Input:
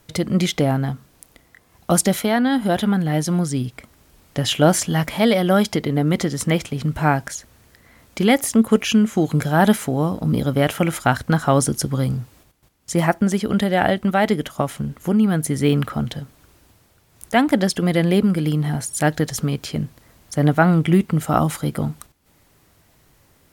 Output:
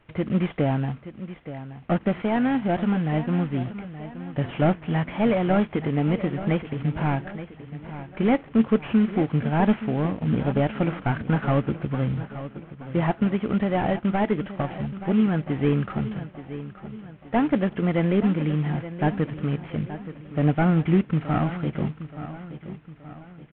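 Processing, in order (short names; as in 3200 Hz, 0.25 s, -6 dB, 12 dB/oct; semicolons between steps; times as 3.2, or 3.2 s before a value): CVSD 16 kbps; feedback echo 0.875 s, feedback 46%, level -13 dB; gain -3.5 dB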